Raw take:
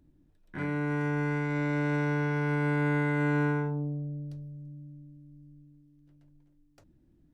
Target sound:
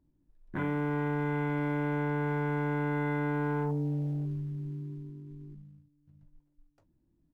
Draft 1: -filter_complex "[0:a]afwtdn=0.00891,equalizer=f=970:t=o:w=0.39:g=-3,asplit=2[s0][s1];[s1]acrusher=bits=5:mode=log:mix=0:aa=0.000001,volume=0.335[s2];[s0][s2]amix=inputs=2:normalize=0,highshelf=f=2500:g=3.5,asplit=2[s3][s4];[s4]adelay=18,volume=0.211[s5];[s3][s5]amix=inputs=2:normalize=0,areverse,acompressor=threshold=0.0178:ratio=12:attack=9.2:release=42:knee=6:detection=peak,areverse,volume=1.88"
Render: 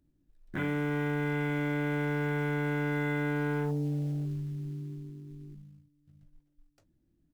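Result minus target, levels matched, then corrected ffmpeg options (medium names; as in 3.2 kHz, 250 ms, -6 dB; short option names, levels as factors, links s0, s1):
4 kHz band +7.0 dB; 1 kHz band -3.5 dB
-filter_complex "[0:a]afwtdn=0.00891,equalizer=f=970:t=o:w=0.39:g=5.5,asplit=2[s0][s1];[s1]acrusher=bits=5:mode=log:mix=0:aa=0.000001,volume=0.335[s2];[s0][s2]amix=inputs=2:normalize=0,highshelf=f=2500:g=-8.5,asplit=2[s3][s4];[s4]adelay=18,volume=0.211[s5];[s3][s5]amix=inputs=2:normalize=0,areverse,acompressor=threshold=0.0178:ratio=12:attack=9.2:release=42:knee=6:detection=peak,areverse,volume=1.88"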